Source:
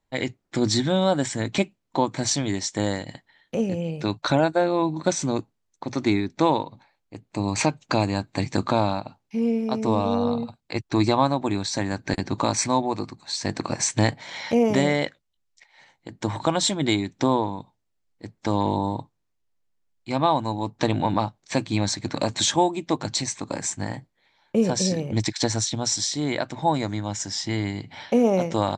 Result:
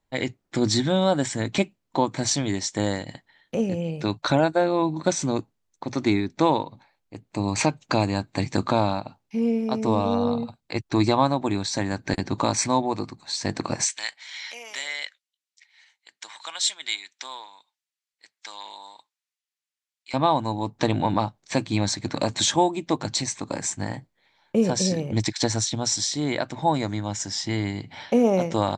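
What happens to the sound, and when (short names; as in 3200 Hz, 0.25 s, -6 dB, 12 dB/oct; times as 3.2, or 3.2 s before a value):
13.85–20.14 Butterworth band-pass 5500 Hz, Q 0.51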